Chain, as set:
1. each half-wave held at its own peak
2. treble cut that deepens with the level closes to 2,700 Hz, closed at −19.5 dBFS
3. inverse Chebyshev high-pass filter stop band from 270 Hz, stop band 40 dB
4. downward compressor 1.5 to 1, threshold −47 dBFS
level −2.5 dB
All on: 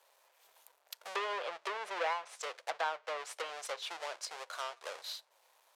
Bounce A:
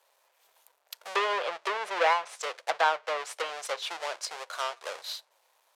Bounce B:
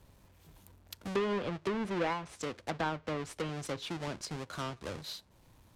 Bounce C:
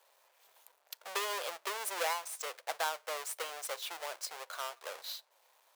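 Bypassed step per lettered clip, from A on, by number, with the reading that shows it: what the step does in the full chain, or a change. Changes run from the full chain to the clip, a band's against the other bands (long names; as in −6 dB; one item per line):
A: 4, average gain reduction 7.0 dB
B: 3, 250 Hz band +24.5 dB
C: 2, 8 kHz band +7.5 dB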